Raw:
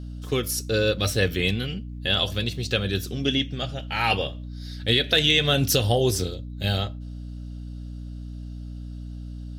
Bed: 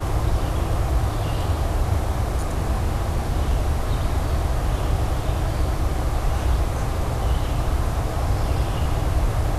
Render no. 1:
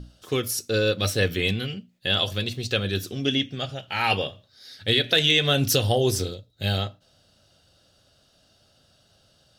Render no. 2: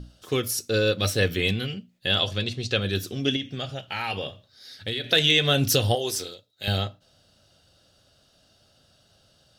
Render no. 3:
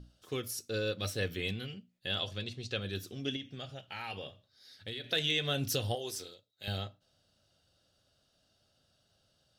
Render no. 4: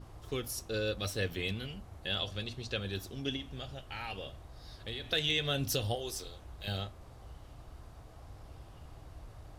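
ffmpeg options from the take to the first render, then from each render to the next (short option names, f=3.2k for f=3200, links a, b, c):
-af "bandreject=f=60:t=h:w=6,bandreject=f=120:t=h:w=6,bandreject=f=180:t=h:w=6,bandreject=f=240:t=h:w=6,bandreject=f=300:t=h:w=6"
-filter_complex "[0:a]asettb=1/sr,asplit=3[a][b][c];[a]atrim=end=2.194[d];[b]atrim=start=2.19:end=2.82,asetpts=PTS-STARTPTS,afade=t=in:d=0.004:c=qsin,afade=t=out:st=0.626:d=0.004:c=qsin,lowpass=7.7k[e];[c]atrim=start=2.816[f];[d][e]acrossfade=d=0.004:c1=hsin:c2=qsin[g];[g][f]acrossfade=d=0.004:c1=qsin:c2=hsin,asettb=1/sr,asplit=3[h][i][j];[h]atrim=end=3.364[k];[i]atrim=start=3.36:end=5.11,asetpts=PTS-STARTPTS,afade=t=in:d=0.004:c=qsin,afade=t=out:st=1.746:d=0.004:c=qsin,acompressor=threshold=-26dB:ratio=4:attack=3.2:release=140:knee=1:detection=peak[l];[j]atrim=start=5.106[m];[k][l]acrossfade=d=0.004:c1=hsin:c2=qsin[n];[n][m]acrossfade=d=0.004:c1=qsin:c2=hsin,asettb=1/sr,asplit=3[o][p][q];[o]atrim=end=5.954[r];[p]atrim=start=5.95:end=6.68,asetpts=PTS-STARTPTS,afade=t=in:d=0.004:c=qsin,afade=t=out:st=0.726:d=0.004:c=qsin,highpass=f=860:p=1[s];[q]atrim=start=6.676[t];[r][s]acrossfade=d=0.004:c1=hsin:c2=qsin[u];[u][t]acrossfade=d=0.004:c1=qsin:c2=hsin"
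-af "volume=-11.5dB"
-filter_complex "[1:a]volume=-28.5dB[a];[0:a][a]amix=inputs=2:normalize=0"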